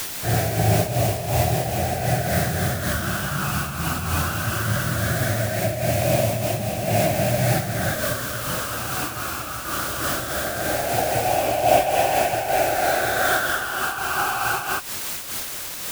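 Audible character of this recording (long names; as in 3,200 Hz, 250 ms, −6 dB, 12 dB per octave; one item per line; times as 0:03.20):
phaser sweep stages 12, 0.19 Hz, lowest notch 630–1,300 Hz
a quantiser's noise floor 6 bits, dither triangular
amplitude modulation by smooth noise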